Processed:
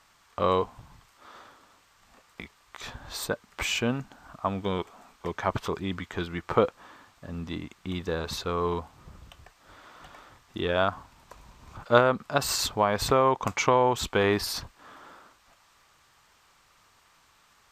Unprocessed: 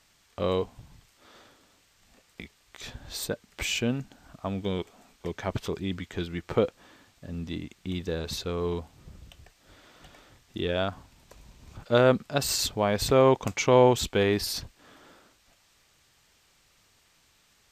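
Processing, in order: peaking EQ 1.1 kHz +11.5 dB 1.2 oct; 11.98–14.24 s: compression 4:1, threshold -17 dBFS, peak gain reduction 7.5 dB; trim -1 dB

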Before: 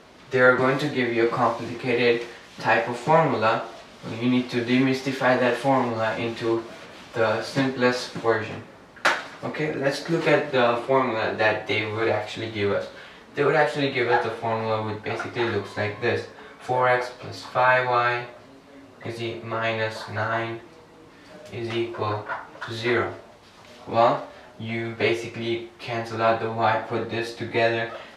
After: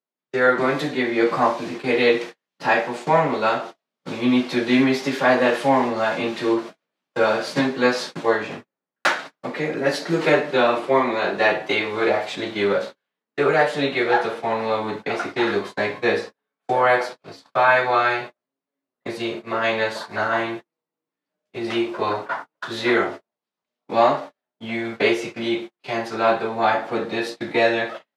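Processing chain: gate -34 dBFS, range -43 dB; high-pass 150 Hz 24 dB/octave; level rider gain up to 6 dB; trim -2 dB

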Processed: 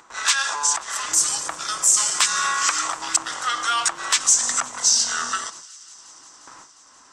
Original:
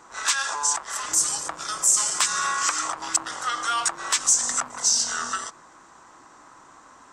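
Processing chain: gate with hold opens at -38 dBFS; peaking EQ 3.1 kHz +5.5 dB 2.4 oct; upward compressor, threshold -39 dBFS; feedback echo behind a high-pass 177 ms, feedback 84%, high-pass 2.5 kHz, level -23 dB

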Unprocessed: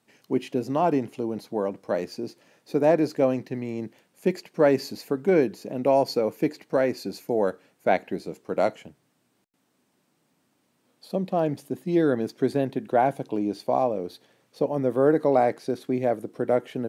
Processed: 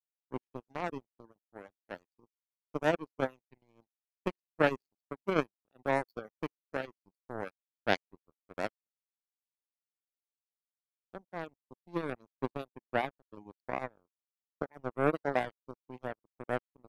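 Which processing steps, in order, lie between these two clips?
power-law waveshaper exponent 3; reverb removal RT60 0.57 s

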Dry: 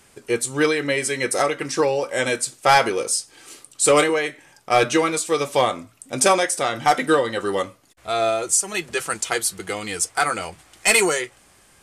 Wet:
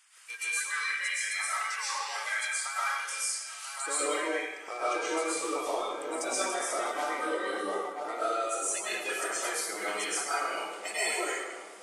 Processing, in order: coarse spectral quantiser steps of 30 dB; high-pass 1.1 kHz 24 dB/octave, from 3.86 s 320 Hz; filtered feedback delay 983 ms, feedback 58%, low-pass 1.6 kHz, level -16.5 dB; compression 6:1, threshold -30 dBFS, peak gain reduction 16.5 dB; reverberation RT60 1.0 s, pre-delay 85 ms, DRR -10 dB; trim -8.5 dB

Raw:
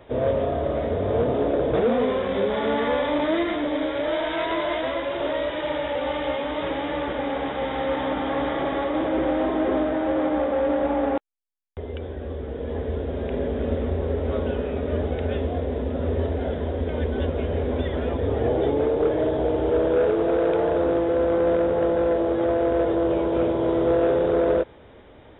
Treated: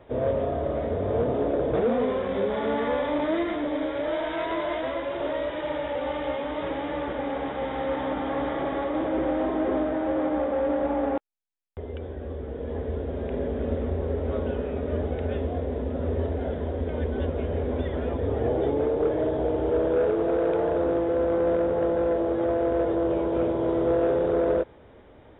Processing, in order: treble shelf 3.4 kHz -9.5 dB; trim -2.5 dB

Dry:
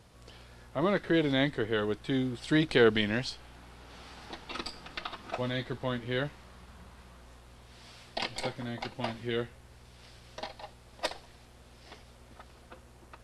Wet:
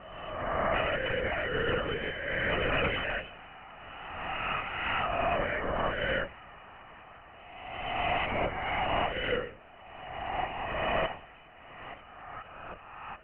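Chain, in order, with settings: reverse spectral sustain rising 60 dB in 1.67 s; hum notches 60/120/180/240/300/360/420/480/540 Hz; integer overflow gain 15.5 dB; compression 10:1, threshold -28 dBFS, peak gain reduction 10 dB; FFT band-pass 410–3100 Hz; LPC vocoder at 8 kHz whisper; trim +5 dB

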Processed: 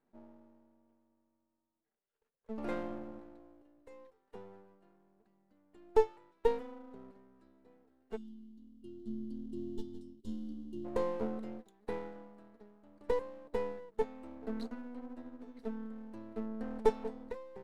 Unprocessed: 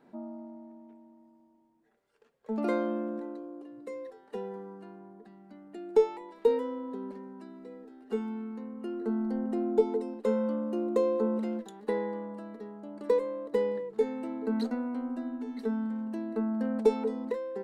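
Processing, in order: partial rectifier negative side -12 dB; time-frequency box 8.17–10.85 s, 390–2800 Hz -25 dB; upward expansion 1.5:1, over -52 dBFS

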